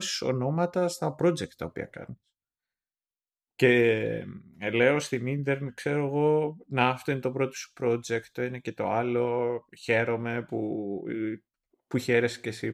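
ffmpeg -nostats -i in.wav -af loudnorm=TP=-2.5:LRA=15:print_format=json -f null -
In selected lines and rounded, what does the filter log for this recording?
"input_i" : "-28.3",
"input_tp" : "-9.1",
"input_lra" : "2.8",
"input_thresh" : "-38.6",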